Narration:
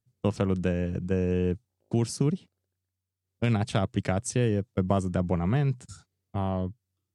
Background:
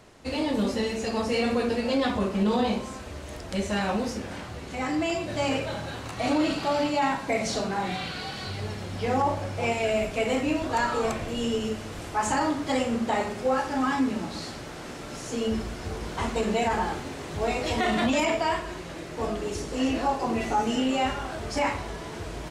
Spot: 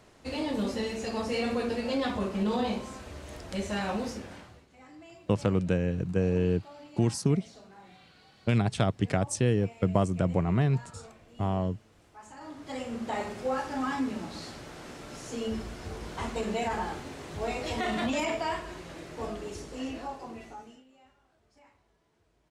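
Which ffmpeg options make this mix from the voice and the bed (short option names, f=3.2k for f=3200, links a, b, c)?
-filter_complex "[0:a]adelay=5050,volume=0dB[a];[1:a]volume=13.5dB,afade=t=out:st=4.07:d=0.6:silence=0.112202,afade=t=in:st=12.36:d=0.91:silence=0.125893,afade=t=out:st=19.09:d=1.75:silence=0.0334965[b];[a][b]amix=inputs=2:normalize=0"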